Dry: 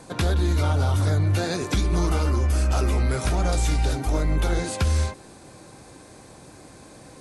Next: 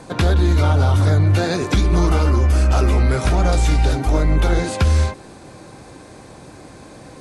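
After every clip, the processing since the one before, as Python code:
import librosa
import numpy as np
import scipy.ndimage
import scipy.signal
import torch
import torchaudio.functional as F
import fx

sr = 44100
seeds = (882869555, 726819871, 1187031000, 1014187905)

y = fx.high_shelf(x, sr, hz=6700.0, db=-9.5)
y = y * librosa.db_to_amplitude(6.5)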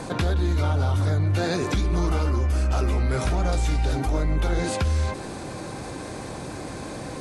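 y = fx.env_flatten(x, sr, amount_pct=50)
y = y * librosa.db_to_amplitude(-8.5)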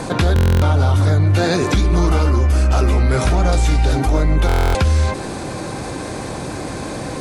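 y = fx.buffer_glitch(x, sr, at_s=(0.34, 4.47), block=1024, repeats=11)
y = y * librosa.db_to_amplitude(8.0)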